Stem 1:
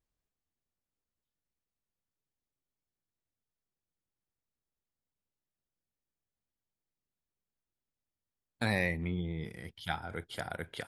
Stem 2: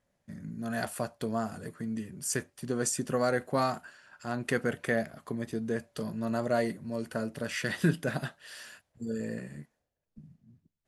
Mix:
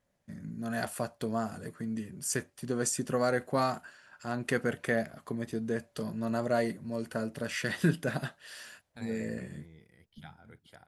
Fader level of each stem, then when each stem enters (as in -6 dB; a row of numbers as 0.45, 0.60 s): -16.0, -0.5 dB; 0.35, 0.00 s